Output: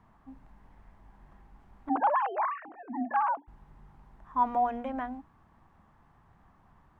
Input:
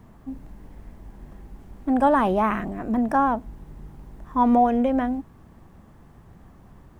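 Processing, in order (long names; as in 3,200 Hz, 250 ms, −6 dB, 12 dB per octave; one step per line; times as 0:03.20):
0:01.89–0:03.48: three sine waves on the formant tracks
low-pass filter 1,900 Hz 6 dB per octave
low shelf with overshoot 670 Hz −8 dB, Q 1.5
mains-hum notches 60/120/180/240/300/360 Hz
level −5 dB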